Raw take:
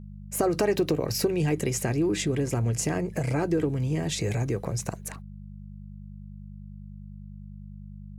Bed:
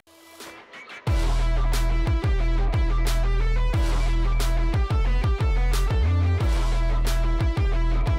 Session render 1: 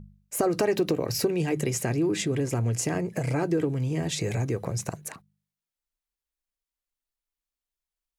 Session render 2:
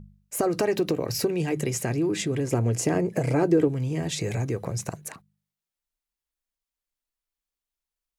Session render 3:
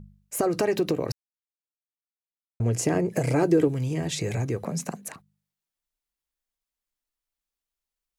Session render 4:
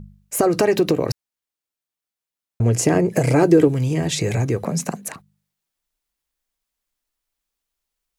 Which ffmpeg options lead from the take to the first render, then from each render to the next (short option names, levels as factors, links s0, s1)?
-af "bandreject=f=50:t=h:w=4,bandreject=f=100:t=h:w=4,bandreject=f=150:t=h:w=4,bandreject=f=200:t=h:w=4"
-filter_complex "[0:a]asettb=1/sr,asplit=3[s0][s1][s2];[s0]atrim=end=2.504[s3];[s1]atrim=start=2.5:end=3.68,asetpts=PTS-STARTPTS,afade=t=in:d=0.004:c=qsin,afade=t=out:st=1.176:d=0.004:c=qsin,equalizer=f=400:t=o:w=2.2:g=6[s4];[s2]atrim=start=3.676[s5];[s3][s4]acrossfade=d=0.004:c1=hsin:c2=qsin[s6];[s6][s5]acrossfade=d=0.004:c1=qsin:c2=hsin"
-filter_complex "[0:a]asettb=1/sr,asplit=3[s0][s1][s2];[s0]atrim=end=3.114[s3];[s1]atrim=start=3.11:end=3.94,asetpts=PTS-STARTPTS,afade=t=in:d=0.004:c=qsin,afade=t=out:st=0.826:d=0.004:c=qsin,highshelf=f=3500:g=6[s4];[s2]atrim=start=3.936[s5];[s3][s4]acrossfade=d=0.004:c1=hsin:c2=qsin[s6];[s6][s5]acrossfade=d=0.004:c1=qsin:c2=hsin,asettb=1/sr,asplit=3[s7][s8][s9];[s7]atrim=end=4.644[s10];[s8]atrim=start=4.64:end=5.09,asetpts=PTS-STARTPTS,afade=t=in:d=0.004:c=qsin,afade=t=out:st=0.446:d=0.004:c=qsin,afreqshift=49[s11];[s9]atrim=start=5.086[s12];[s10][s11]acrossfade=d=0.004:c1=hsin:c2=qsin[s13];[s13][s12]acrossfade=d=0.004:c1=qsin:c2=hsin,asplit=3[s14][s15][s16];[s14]atrim=end=1.12,asetpts=PTS-STARTPTS,afade=t=out:st=1.116:d=0.004:c=hsin[s17];[s15]atrim=start=1.12:end=2.6,asetpts=PTS-STARTPTS,volume=0[s18];[s16]atrim=start=2.6,asetpts=PTS-STARTPTS,afade=t=in:d=0.004:c=hsin[s19];[s17][s18][s19]concat=n=3:v=0:a=1"
-af "volume=2.24"